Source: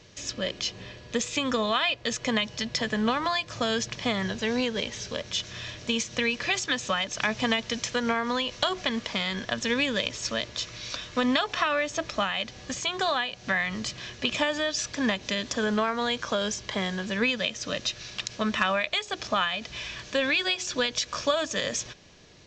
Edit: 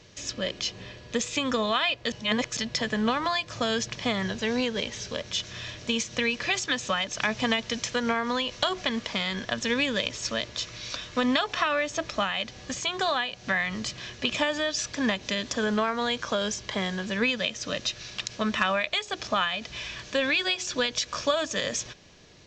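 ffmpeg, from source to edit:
-filter_complex "[0:a]asplit=3[s0][s1][s2];[s0]atrim=end=2.122[s3];[s1]atrim=start=2.118:end=2.572,asetpts=PTS-STARTPTS,areverse[s4];[s2]atrim=start=2.568[s5];[s3][s4]acrossfade=d=0.004:c1=hsin:c2=hsin[s6];[s6][s5]acrossfade=d=0.004:c1=hsin:c2=hsin"

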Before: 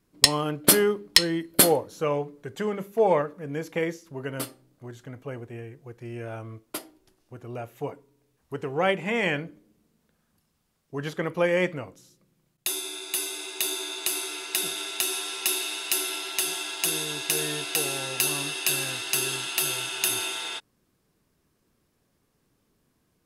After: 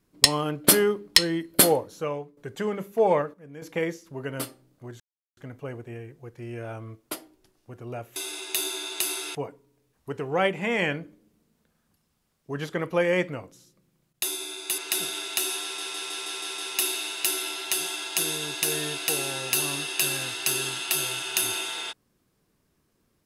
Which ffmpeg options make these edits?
-filter_complex "[0:a]asplit=14[s0][s1][s2][s3][s4][s5][s6][s7][s8][s9][s10][s11][s12][s13];[s0]atrim=end=2.37,asetpts=PTS-STARTPTS,afade=t=out:st=1.83:d=0.54:silence=0.211349[s14];[s1]atrim=start=2.37:end=3.34,asetpts=PTS-STARTPTS,afade=t=in:d=0.004:c=hsin:silence=0.211349,afade=t=out:st=0.66:d=0.31:c=log:silence=0.281838[s15];[s2]atrim=start=3.34:end=3.62,asetpts=PTS-STARTPTS,volume=0.282[s16];[s3]atrim=start=3.62:end=5,asetpts=PTS-STARTPTS,afade=t=in:d=0.31:c=log:silence=0.281838,afade=t=out:st=1.376:d=0.004:c=hsin,apad=pad_dur=0.37[s17];[s4]atrim=start=5:end=7.792,asetpts=PTS-STARTPTS,afade=t=in:d=0.004:c=hsin[s18];[s5]atrim=start=13.218:end=14.412[s19];[s6]atrim=start=7.788:end=13.222[s20];[s7]atrim=start=14.408:end=15.412[s21];[s8]atrim=start=15.248:end=15.412[s22];[s9]atrim=start=15.248:end=15.412[s23];[s10]atrim=start=15.248:end=15.412[s24];[s11]atrim=start=15.248:end=15.412[s25];[s12]atrim=start=15.248:end=15.412[s26];[s13]atrim=start=15.248[s27];[s14][s15][s16][s17][s18]concat=n=5:v=0:a=1[s28];[s28][s19]acrossfade=d=0.004:c1=hsin:c2=hsin[s29];[s29][s20]acrossfade=d=0.004:c1=hsin:c2=hsin[s30];[s30][s21]acrossfade=d=0.004:c1=hsin:c2=hsin[s31];[s31][s22]acrossfade=d=0.004:c1=hsin:c2=hsin[s32];[s32][s23]acrossfade=d=0.004:c1=hsin:c2=hsin[s33];[s33][s24]acrossfade=d=0.004:c1=hsin:c2=hsin[s34];[s34][s25]acrossfade=d=0.004:c1=hsin:c2=hsin[s35];[s35][s26]acrossfade=d=0.004:c1=hsin:c2=hsin[s36];[s36][s27]acrossfade=d=0.004:c1=hsin:c2=hsin"

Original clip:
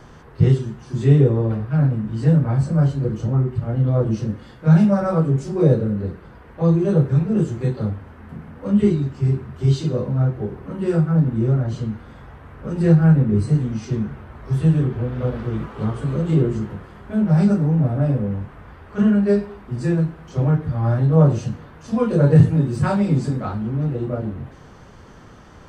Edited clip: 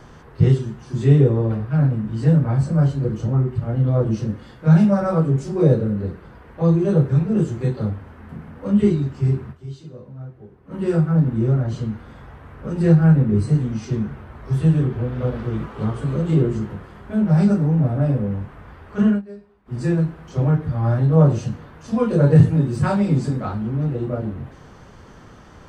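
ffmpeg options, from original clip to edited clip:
-filter_complex "[0:a]asplit=5[s0][s1][s2][s3][s4];[s0]atrim=end=9.82,asetpts=PTS-STARTPTS,afade=t=out:st=9.51:d=0.31:c=exp:silence=0.149624[s5];[s1]atrim=start=9.82:end=10.43,asetpts=PTS-STARTPTS,volume=0.15[s6];[s2]atrim=start=10.43:end=19.22,asetpts=PTS-STARTPTS,afade=t=in:d=0.31:c=exp:silence=0.149624,afade=t=out:st=8.64:d=0.15:c=qsin:silence=0.0944061[s7];[s3]atrim=start=19.22:end=19.65,asetpts=PTS-STARTPTS,volume=0.0944[s8];[s4]atrim=start=19.65,asetpts=PTS-STARTPTS,afade=t=in:d=0.15:c=qsin:silence=0.0944061[s9];[s5][s6][s7][s8][s9]concat=n=5:v=0:a=1"

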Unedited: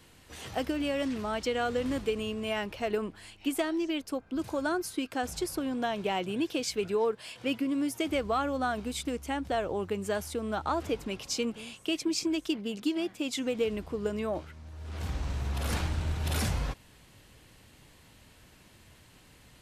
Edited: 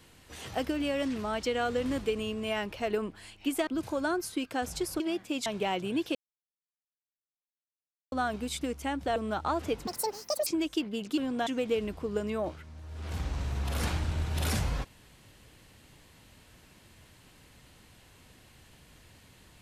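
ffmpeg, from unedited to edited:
-filter_complex "[0:a]asplit=11[s0][s1][s2][s3][s4][s5][s6][s7][s8][s9][s10];[s0]atrim=end=3.672[s11];[s1]atrim=start=4.278:end=5.612[s12];[s2]atrim=start=12.898:end=13.362[s13];[s3]atrim=start=5.898:end=6.59,asetpts=PTS-STARTPTS,afade=t=out:st=0.688:d=0.004:c=hsin[s14];[s4]atrim=start=6.59:end=8.56,asetpts=PTS-STARTPTS,volume=0[s15];[s5]atrim=start=8.56:end=9.602,asetpts=PTS-STARTPTS,afade=t=in:d=0.004:c=hsin[s16];[s6]atrim=start=10.368:end=11.084[s17];[s7]atrim=start=11.08:end=12.19,asetpts=PTS-STARTPTS,asetrate=82026,aresample=44100[s18];[s8]atrim=start=12.186:end=12.902[s19];[s9]atrim=start=5.608:end=5.902[s20];[s10]atrim=start=13.358[s21];[s11][s12]acrossfade=d=0.004:c1=hsin:c2=hsin[s22];[s22][s13]acrossfade=d=0.004:c1=hsin:c2=hsin[s23];[s14][s15][s16]concat=n=3:v=0:a=1[s24];[s23][s24]acrossfade=d=0.004:c1=hsin:c2=hsin[s25];[s25][s17]acrossfade=d=0.004:c1=hsin:c2=hsin[s26];[s26][s18]acrossfade=d=0.004:c1=hsin:c2=hsin[s27];[s27][s19]acrossfade=d=0.004:c1=hsin:c2=hsin[s28];[s28][s20]acrossfade=d=0.004:c1=hsin:c2=hsin[s29];[s29][s21]acrossfade=d=0.004:c1=hsin:c2=hsin"

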